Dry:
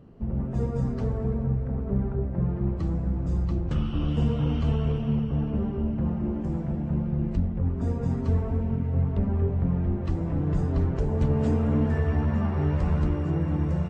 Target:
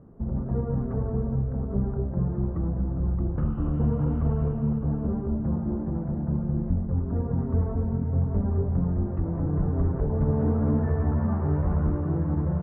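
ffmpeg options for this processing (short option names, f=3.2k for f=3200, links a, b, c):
-af "lowpass=f=1.5k:w=0.5412,lowpass=f=1.5k:w=1.3066,atempo=1.1"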